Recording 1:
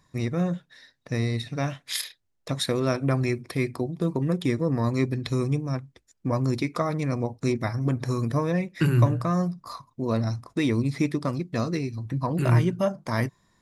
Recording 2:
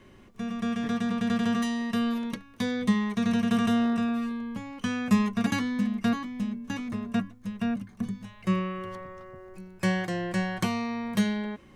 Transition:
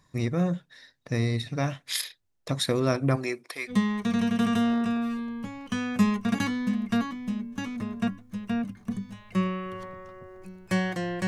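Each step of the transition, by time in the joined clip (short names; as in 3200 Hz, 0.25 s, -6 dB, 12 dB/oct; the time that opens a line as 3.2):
recording 1
3.15–3.75 HPF 270 Hz -> 1200 Hz
3.71 switch to recording 2 from 2.83 s, crossfade 0.08 s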